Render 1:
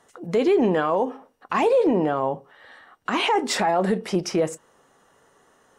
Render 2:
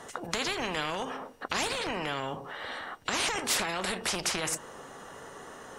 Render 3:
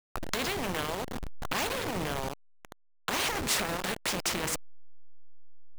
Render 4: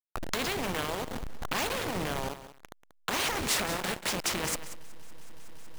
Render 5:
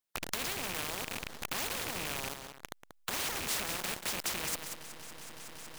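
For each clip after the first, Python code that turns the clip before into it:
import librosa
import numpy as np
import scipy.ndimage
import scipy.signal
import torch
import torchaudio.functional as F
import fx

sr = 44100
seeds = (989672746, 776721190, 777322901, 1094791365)

y1 = fx.high_shelf(x, sr, hz=9300.0, db=-4.5)
y1 = fx.spectral_comp(y1, sr, ratio=4.0)
y1 = y1 * 10.0 ** (1.5 / 20.0)
y2 = fx.delta_hold(y1, sr, step_db=-27.5)
y3 = fx.echo_crushed(y2, sr, ms=186, feedback_pct=35, bits=7, wet_db=-11.5)
y4 = fx.rattle_buzz(y3, sr, strikes_db=-38.0, level_db=-22.0)
y4 = fx.spectral_comp(y4, sr, ratio=2.0)
y4 = y4 * 10.0 ** (-3.5 / 20.0)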